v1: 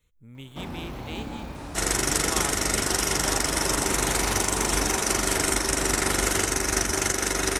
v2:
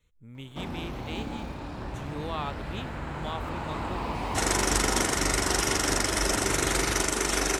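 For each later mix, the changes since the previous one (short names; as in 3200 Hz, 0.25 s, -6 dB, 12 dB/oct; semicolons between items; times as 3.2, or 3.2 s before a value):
second sound: entry +2.60 s; master: add high shelf 9900 Hz -9.5 dB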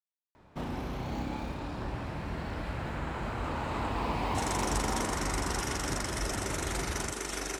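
speech: muted; second sound -9.5 dB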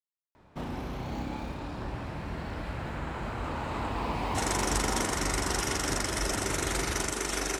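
second sound +4.5 dB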